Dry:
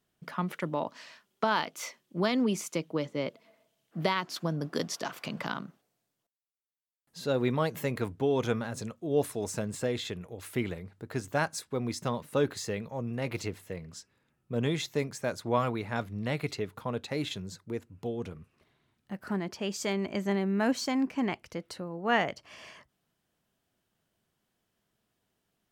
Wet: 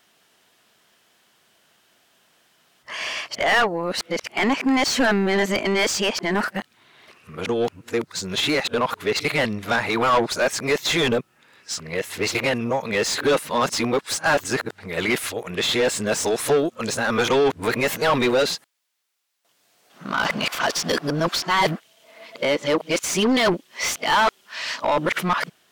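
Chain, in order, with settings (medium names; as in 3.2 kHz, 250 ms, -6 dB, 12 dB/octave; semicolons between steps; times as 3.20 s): reverse the whole clip; treble shelf 2.3 kHz +10.5 dB; overdrive pedal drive 26 dB, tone 2.4 kHz, clips at -9 dBFS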